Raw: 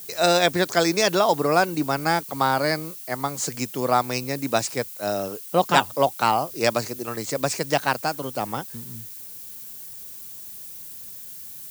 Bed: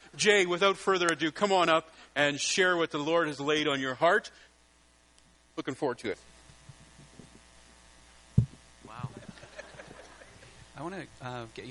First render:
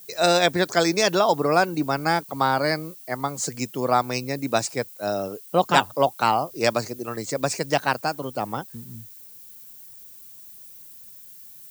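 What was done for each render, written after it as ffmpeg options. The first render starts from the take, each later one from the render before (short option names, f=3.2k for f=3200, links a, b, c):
-af "afftdn=nr=8:nf=-39"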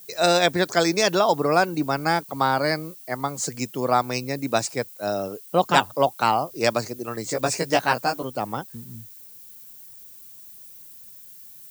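-filter_complex "[0:a]asettb=1/sr,asplit=3[a][b][c];[a]atrim=end=7.244[d];[b]atrim=start=7.24:end=8.23,asetpts=PTS-STARTPTS,afade=t=in:d=0.004:c=qsin,afade=t=out:st=0.986:d=0.004:c=qsin,asplit=2[e][f];[f]adelay=17,volume=-3dB[g];[e][g]amix=inputs=2:normalize=0,atrim=end_sample=43659[h];[c]atrim=start=8.226[i];[d][h]acrossfade=d=0.004:c1=hsin:c2=qsin[j];[j][i]acrossfade=d=0.004:c1=qsin:c2=hsin"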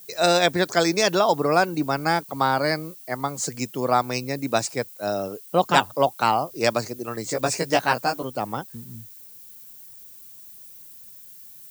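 -af anull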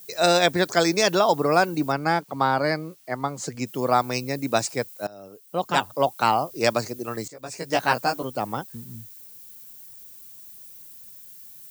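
-filter_complex "[0:a]asettb=1/sr,asplit=3[a][b][c];[a]atrim=end=1.924[d];[b]atrim=start=1.92:end=3.67,asetpts=PTS-STARTPTS,afade=t=in:d=0.004:c=qsin,afade=t=out:st=1.746:d=0.004:c=qsin,lowpass=f=3.5k:p=1[e];[c]atrim=start=3.666[f];[d][e]acrossfade=d=0.004:c1=hsin:c2=qsin[g];[g][f]acrossfade=d=0.004:c1=qsin:c2=hsin,asplit=3[h][i][j];[h]atrim=end=5.07,asetpts=PTS-STARTPTS,afade=t=out:st=5.066:d=0.004:c=hsin:silence=0.0668344[k];[i]atrim=start=5.07:end=7.28,asetpts=PTS-STARTPTS,afade=t=in:d=1.17:silence=0.0668344,afade=t=out:st=2.206:d=0.004:c=hsin:silence=0.125893[l];[j]atrim=start=7.28,asetpts=PTS-STARTPTS,afade=t=in:d=0.57:c=qua:silence=0.125893[m];[k][l][m]concat=n=3:v=0:a=1"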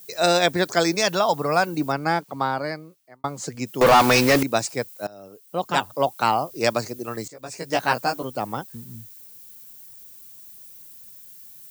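-filter_complex "[0:a]asettb=1/sr,asplit=3[a][b][c];[a]atrim=end=0.954[d];[b]atrim=start=0.95:end=1.67,asetpts=PTS-STARTPTS,afade=t=in:d=0.004:c=qsin,afade=t=out:st=0.716:d=0.004:c=qsin,equalizer=f=350:t=o:w=0.77:g=-6.5[e];[c]atrim=start=1.666[f];[d][e]acrossfade=d=0.004:c1=hsin:c2=qsin[g];[g][f]acrossfade=d=0.004:c1=qsin:c2=hsin,asettb=1/sr,asplit=3[h][i][j];[h]atrim=end=3.814[k];[i]atrim=start=3.81:end=4.43,asetpts=PTS-STARTPTS,afade=t=in:d=0.004:c=qsin,afade=t=out:st=0.616:d=0.004:c=qsin,asplit=2[l][m];[m]highpass=f=720:p=1,volume=34dB,asoftclip=type=tanh:threshold=-6.5dB[n];[l][n]amix=inputs=2:normalize=0,lowpass=f=3.5k:p=1,volume=-6dB[o];[j]atrim=start=4.426[p];[k][o]acrossfade=d=0.004:c1=hsin:c2=qsin[q];[q][p]acrossfade=d=0.004:c1=qsin:c2=hsin,asplit=2[r][s];[r]atrim=end=3.24,asetpts=PTS-STARTPTS,afade=t=out:st=2.19:d=1.05[t];[s]atrim=start=3.24,asetpts=PTS-STARTPTS,afade=t=in:d=0.004:c=hsin[u];[t][u]concat=n=2:v=0:a=1"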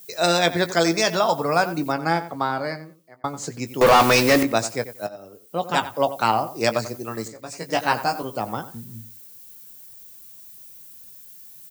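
-filter_complex "[0:a]asplit=2[a][b];[b]adelay=18,volume=-11dB[c];[a][c]amix=inputs=2:normalize=0,asplit=2[d][e];[e]adelay=91,lowpass=f=3k:p=1,volume=-13dB,asplit=2[f][g];[g]adelay=91,lowpass=f=3k:p=1,volume=0.21[h];[d][f][h]amix=inputs=3:normalize=0"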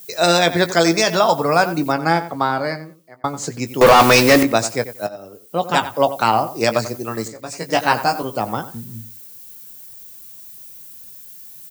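-af "volume=5dB,alimiter=limit=-2dB:level=0:latency=1"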